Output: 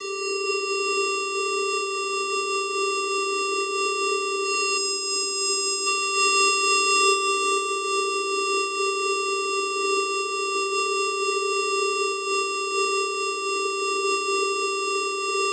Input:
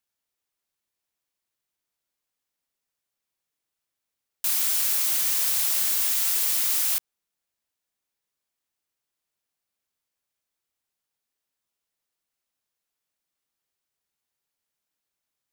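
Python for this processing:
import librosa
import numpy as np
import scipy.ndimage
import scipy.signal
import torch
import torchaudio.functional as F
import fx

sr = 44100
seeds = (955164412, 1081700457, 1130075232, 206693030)

y = x + 0.5 * 10.0 ** (-33.5 / 20.0) * np.sign(x)
y = fx.peak_eq(y, sr, hz=420.0, db=9.5, octaves=0.32)
y = fx.leveller(y, sr, passes=5)
y = fx.low_shelf(y, sr, hz=200.0, db=-7.0)
y = fx.vocoder(y, sr, bands=8, carrier='square', carrier_hz=392.0)
y = y + 1.0 * np.pad(y, (int(6.9 * sr / 1000.0), 0))[:len(y)]
y = fx.rev_schroeder(y, sr, rt60_s=3.9, comb_ms=29, drr_db=-3.5)
y = np.clip(y, -10.0 ** (-5.0 / 20.0), 10.0 ** (-5.0 / 20.0))
y = fx.spec_box(y, sr, start_s=4.78, length_s=1.09, low_hz=390.0, high_hz=5000.0, gain_db=-10)
y = fx.am_noise(y, sr, seeds[0], hz=5.7, depth_pct=60)
y = y * 10.0 ** (-4.5 / 20.0)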